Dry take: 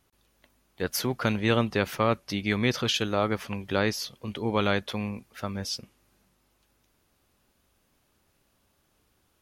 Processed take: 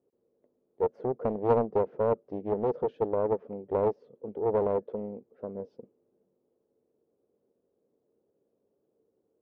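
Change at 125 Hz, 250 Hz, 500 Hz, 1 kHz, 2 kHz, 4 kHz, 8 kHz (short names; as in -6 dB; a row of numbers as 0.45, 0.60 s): -9.0 dB, -7.0 dB, +2.5 dB, -2.0 dB, under -20 dB, under -35 dB, under -40 dB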